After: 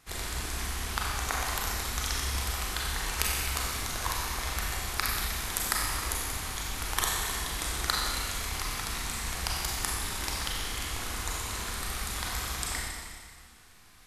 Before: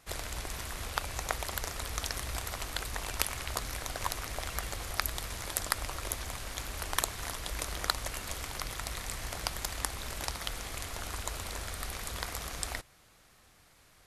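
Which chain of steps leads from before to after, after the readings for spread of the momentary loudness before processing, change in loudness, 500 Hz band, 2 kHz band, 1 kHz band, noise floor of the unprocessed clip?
6 LU, +5.0 dB, +0.5 dB, +5.0 dB, +4.0 dB, -62 dBFS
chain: bell 580 Hz -9 dB 0.45 oct; Schroeder reverb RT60 1.8 s, combs from 30 ms, DRR -3.5 dB

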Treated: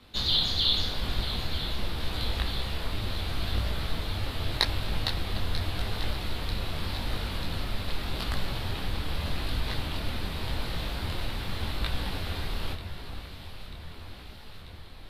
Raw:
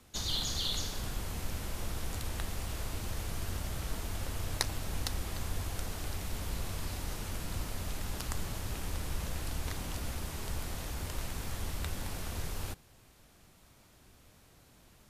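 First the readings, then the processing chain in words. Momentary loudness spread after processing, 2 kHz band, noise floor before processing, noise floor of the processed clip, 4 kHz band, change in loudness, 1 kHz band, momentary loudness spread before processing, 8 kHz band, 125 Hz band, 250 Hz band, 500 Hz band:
15 LU, +7.5 dB, -61 dBFS, -44 dBFS, +10.5 dB, +7.0 dB, +6.5 dB, 5 LU, -6.5 dB, +6.0 dB, +6.0 dB, +6.0 dB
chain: resonant high shelf 5100 Hz -8.5 dB, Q 3; echo with dull and thin repeats by turns 0.47 s, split 2300 Hz, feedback 82%, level -10 dB; detuned doubles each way 29 cents; gain +9 dB

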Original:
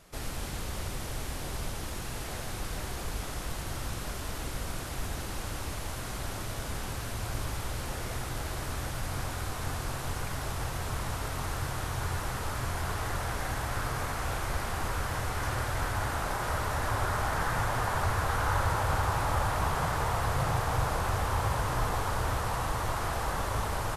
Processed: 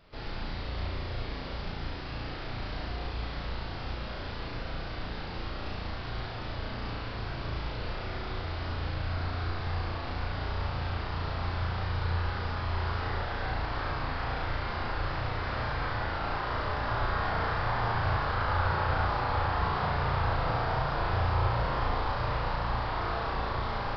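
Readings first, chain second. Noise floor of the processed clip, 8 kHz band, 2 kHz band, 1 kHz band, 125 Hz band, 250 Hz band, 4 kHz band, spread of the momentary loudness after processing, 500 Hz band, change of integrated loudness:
-38 dBFS, under -25 dB, +0.5 dB, +0.5 dB, +0.5 dB, +0.5 dB, 0.0 dB, 9 LU, +0.5 dB, 0.0 dB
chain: flutter echo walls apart 6 m, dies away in 0.79 s; downsampling 11025 Hz; gain -3 dB

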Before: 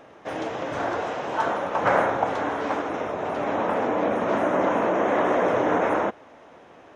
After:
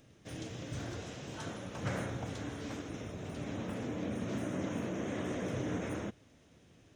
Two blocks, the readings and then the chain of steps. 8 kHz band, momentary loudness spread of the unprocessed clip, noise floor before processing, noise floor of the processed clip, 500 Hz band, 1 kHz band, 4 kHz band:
n/a, 7 LU, -50 dBFS, -63 dBFS, -18.5 dB, -23.5 dB, -7.5 dB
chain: EQ curve 120 Hz 0 dB, 890 Hz -28 dB, 3800 Hz -8 dB, 8200 Hz -1 dB; gain +2 dB

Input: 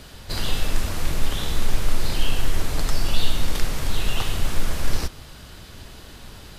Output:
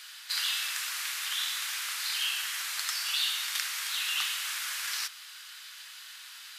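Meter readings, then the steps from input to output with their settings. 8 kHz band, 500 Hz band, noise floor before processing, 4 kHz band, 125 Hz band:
+1.5 dB, under -30 dB, -43 dBFS, +1.5 dB, under -40 dB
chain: HPF 1400 Hz 24 dB/oct; gain +1.5 dB

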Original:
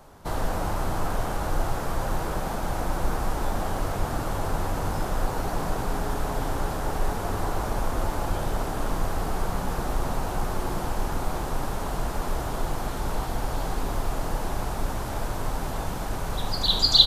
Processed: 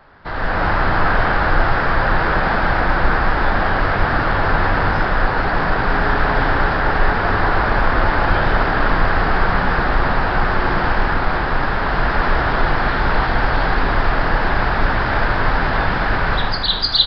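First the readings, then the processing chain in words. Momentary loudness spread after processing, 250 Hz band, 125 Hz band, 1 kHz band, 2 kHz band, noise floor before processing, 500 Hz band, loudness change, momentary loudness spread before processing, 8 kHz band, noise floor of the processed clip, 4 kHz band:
2 LU, +9.0 dB, +9.0 dB, +13.0 dB, +21.0 dB, -31 dBFS, +10.0 dB, +12.0 dB, 2 LU, under -15 dB, -20 dBFS, +3.0 dB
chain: bell 1700 Hz +13.5 dB 0.99 oct; AGC gain up to 13 dB; downsampling 11025 Hz; gain -1 dB

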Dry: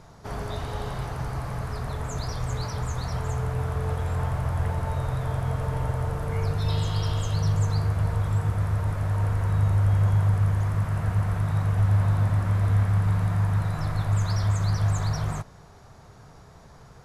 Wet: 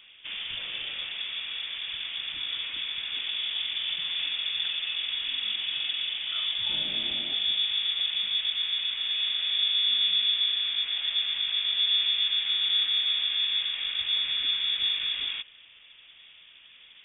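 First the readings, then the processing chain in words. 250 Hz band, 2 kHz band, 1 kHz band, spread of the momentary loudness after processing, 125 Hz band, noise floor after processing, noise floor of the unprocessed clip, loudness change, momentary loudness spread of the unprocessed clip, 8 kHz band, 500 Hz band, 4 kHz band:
under -20 dB, +5.0 dB, -17.0 dB, 10 LU, under -40 dB, -53 dBFS, -49 dBFS, 0.0 dB, 10 LU, n/a, under -20 dB, +22.0 dB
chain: low shelf 74 Hz -12 dB; inverted band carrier 3500 Hz; gain -1.5 dB

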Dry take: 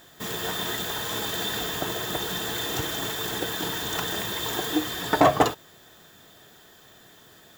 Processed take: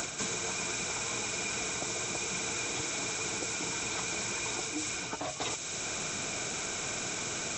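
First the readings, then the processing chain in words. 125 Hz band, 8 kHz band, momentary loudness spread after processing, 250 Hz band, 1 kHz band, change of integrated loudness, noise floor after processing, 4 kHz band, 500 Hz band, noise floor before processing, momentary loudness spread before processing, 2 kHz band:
-8.0 dB, +4.0 dB, 2 LU, -10.0 dB, -11.5 dB, -6.5 dB, -38 dBFS, -6.5 dB, -11.0 dB, -53 dBFS, 7 LU, -3.5 dB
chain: nonlinear frequency compression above 1100 Hz 1.5:1; high shelf 5600 Hz +11 dB; reverse; compressor 6:1, threshold -43 dBFS, peak gain reduction 27.5 dB; reverse; vibrato 14 Hz 29 cents; three-band squash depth 100%; gain +9 dB

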